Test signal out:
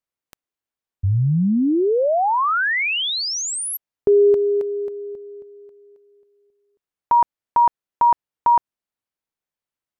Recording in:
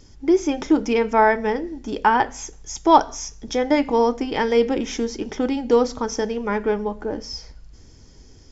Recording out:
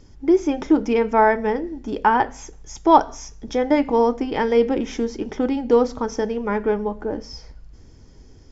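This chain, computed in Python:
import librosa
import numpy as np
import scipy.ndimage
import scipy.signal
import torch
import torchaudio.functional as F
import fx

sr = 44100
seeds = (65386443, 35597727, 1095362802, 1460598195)

y = fx.high_shelf(x, sr, hz=2800.0, db=-9.0)
y = F.gain(torch.from_numpy(y), 1.0).numpy()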